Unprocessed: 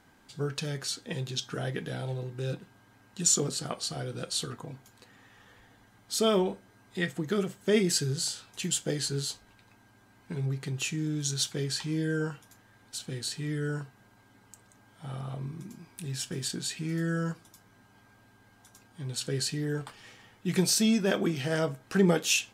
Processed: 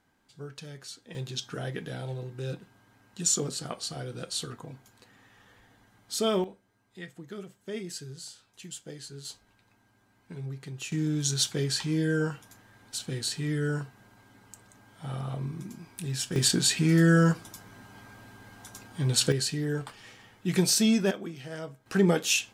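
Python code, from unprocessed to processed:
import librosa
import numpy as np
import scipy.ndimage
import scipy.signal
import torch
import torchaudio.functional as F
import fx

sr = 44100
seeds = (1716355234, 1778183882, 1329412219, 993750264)

y = fx.gain(x, sr, db=fx.steps((0.0, -9.5), (1.15, -1.5), (6.44, -12.0), (9.25, -6.0), (10.92, 3.0), (16.36, 10.0), (19.32, 1.5), (21.11, -10.0), (21.86, 0.5)))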